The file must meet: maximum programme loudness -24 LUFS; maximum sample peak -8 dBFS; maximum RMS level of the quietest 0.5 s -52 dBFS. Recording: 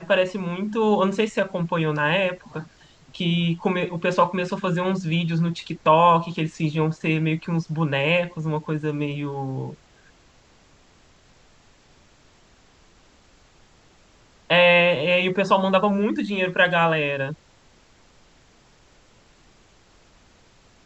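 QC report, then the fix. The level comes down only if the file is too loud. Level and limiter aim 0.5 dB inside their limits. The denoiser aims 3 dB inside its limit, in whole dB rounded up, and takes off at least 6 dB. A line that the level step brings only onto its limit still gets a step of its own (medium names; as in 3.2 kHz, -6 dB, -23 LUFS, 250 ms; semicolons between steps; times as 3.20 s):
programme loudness -21.5 LUFS: fail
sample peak -4.5 dBFS: fail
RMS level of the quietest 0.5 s -55 dBFS: pass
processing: trim -3 dB; peak limiter -8.5 dBFS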